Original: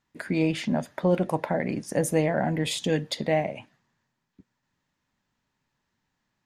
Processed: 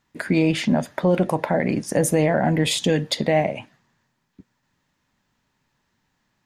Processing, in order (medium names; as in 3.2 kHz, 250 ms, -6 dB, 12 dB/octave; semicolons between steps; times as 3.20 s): peak limiter -15.5 dBFS, peak gain reduction 5 dB; trim +7 dB